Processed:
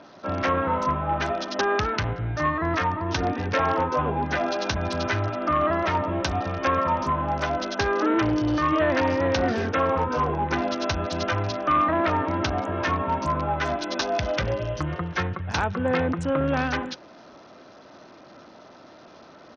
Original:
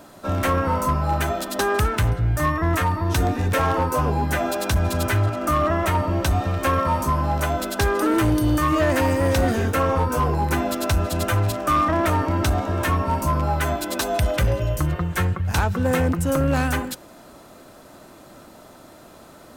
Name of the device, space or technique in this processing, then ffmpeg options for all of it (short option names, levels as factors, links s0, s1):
Bluetooth headset: -filter_complex "[0:a]asettb=1/sr,asplit=3[s0][s1][s2];[s0]atrim=end=11.734[s3];[s1]atrim=start=11.73:end=12.4,asetpts=PTS-STARTPTS,afade=t=in:d=0.004:c=qsin,afade=t=out:st=0.666:d=0.004:c=qsin,lowpass=f=5300:w=0.5412,lowpass=f=5300:w=1.3066[s4];[s2]atrim=start=12.396[s5];[s3][s4]acrossfade=d=0.004:c1=hsin:c2=qsin[s6];[s6][s5]acrossfade=d=0.004:c1=qsin:c2=hsin,highpass=f=200:p=1,aresample=16000,aresample=44100,volume=0.891" -ar 48000 -c:a sbc -b:a 64k